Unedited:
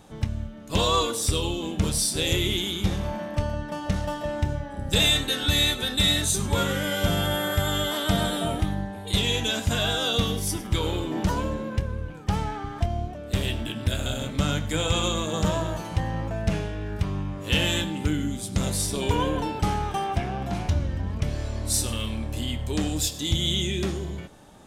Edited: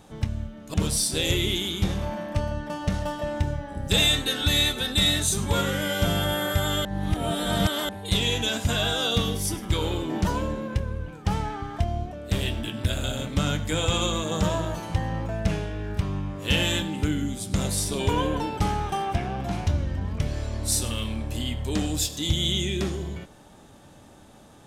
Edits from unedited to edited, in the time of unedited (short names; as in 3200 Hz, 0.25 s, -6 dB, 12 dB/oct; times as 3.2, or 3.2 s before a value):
0.74–1.76 cut
7.87–8.91 reverse